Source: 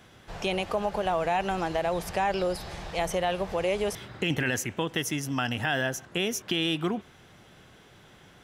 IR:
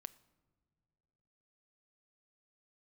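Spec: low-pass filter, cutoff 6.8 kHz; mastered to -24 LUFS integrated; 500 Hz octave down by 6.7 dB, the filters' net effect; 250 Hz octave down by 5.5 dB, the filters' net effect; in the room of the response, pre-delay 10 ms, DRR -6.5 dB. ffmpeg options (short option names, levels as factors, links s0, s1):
-filter_complex "[0:a]lowpass=6800,equalizer=f=250:t=o:g=-5.5,equalizer=f=500:t=o:g=-7.5,asplit=2[s0][s1];[1:a]atrim=start_sample=2205,adelay=10[s2];[s1][s2]afir=irnorm=-1:irlink=0,volume=3.98[s3];[s0][s3]amix=inputs=2:normalize=0,volume=1.06"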